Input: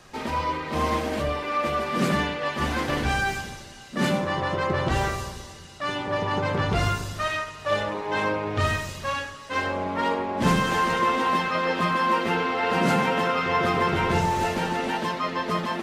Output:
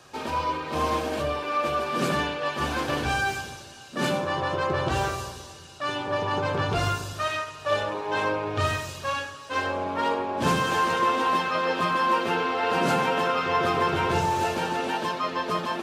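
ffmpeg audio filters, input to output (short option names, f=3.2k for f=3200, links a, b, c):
-af "highpass=84,equalizer=f=200:w=2.8:g=-8.5,bandreject=f=2k:w=6.4"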